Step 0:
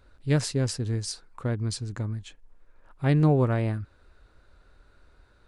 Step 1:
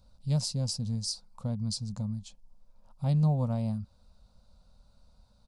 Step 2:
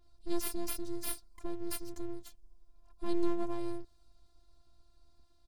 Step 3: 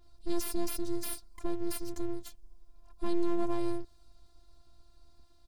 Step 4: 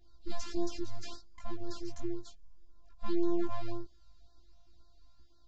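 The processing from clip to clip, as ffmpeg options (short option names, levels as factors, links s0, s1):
-filter_complex "[0:a]firequalizer=gain_entry='entry(120,0);entry(210,9);entry(340,-25);entry(520,-2);entry(900,-1);entry(1700,-21);entry(2500,-10);entry(4800,7);entry(6900,2)':delay=0.05:min_phase=1,asplit=2[s0][s1];[s1]acompressor=threshold=0.0316:ratio=6,volume=0.794[s2];[s0][s2]amix=inputs=2:normalize=0,volume=0.422"
-af "aeval=exprs='abs(val(0))':c=same,afftfilt=real='hypot(re,im)*cos(PI*b)':imag='0':win_size=512:overlap=0.75,adynamicequalizer=threshold=0.001:dfrequency=4200:dqfactor=0.7:tfrequency=4200:tqfactor=0.7:attack=5:release=100:ratio=0.375:range=2.5:mode=boostabove:tftype=highshelf"
-af "alimiter=limit=0.0708:level=0:latency=1:release=15,volume=1.78"
-af "flanger=delay=18:depth=2:speed=0.76,aresample=16000,aresample=44100,afftfilt=real='re*(1-between(b*sr/1024,340*pow(2600/340,0.5+0.5*sin(2*PI*1.9*pts/sr))/1.41,340*pow(2600/340,0.5+0.5*sin(2*PI*1.9*pts/sr))*1.41))':imag='im*(1-between(b*sr/1024,340*pow(2600/340,0.5+0.5*sin(2*PI*1.9*pts/sr))/1.41,340*pow(2600/340,0.5+0.5*sin(2*PI*1.9*pts/sr))*1.41))':win_size=1024:overlap=0.75,volume=1.12"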